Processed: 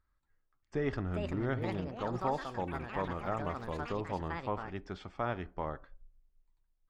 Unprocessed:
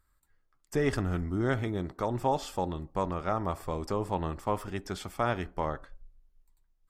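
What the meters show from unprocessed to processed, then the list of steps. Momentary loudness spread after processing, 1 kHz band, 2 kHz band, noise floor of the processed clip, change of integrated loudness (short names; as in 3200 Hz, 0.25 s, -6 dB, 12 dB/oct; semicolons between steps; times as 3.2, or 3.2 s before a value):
6 LU, -4.5 dB, -3.5 dB, -78 dBFS, -4.5 dB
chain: Gaussian blur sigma 1.9 samples; echoes that change speed 0.628 s, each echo +6 st, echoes 3, each echo -6 dB; gain -5.5 dB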